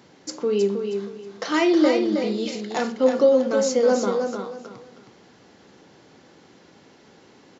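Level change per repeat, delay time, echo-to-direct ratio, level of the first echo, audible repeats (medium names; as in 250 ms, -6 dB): -11.5 dB, 317 ms, -5.5 dB, -6.0 dB, 3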